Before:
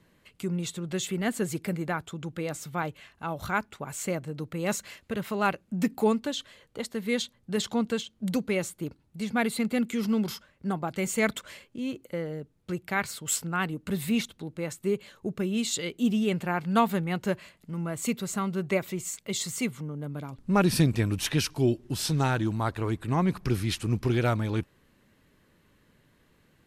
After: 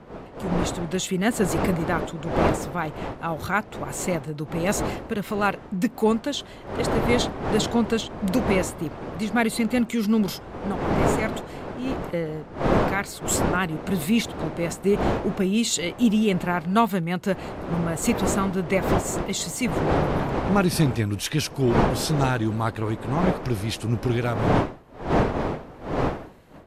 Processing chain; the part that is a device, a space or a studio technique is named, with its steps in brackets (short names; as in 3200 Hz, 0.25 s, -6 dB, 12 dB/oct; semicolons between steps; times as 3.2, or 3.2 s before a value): smartphone video outdoors (wind noise 630 Hz -30 dBFS; AGC gain up to 14.5 dB; gain -7 dB; AAC 96 kbps 32000 Hz)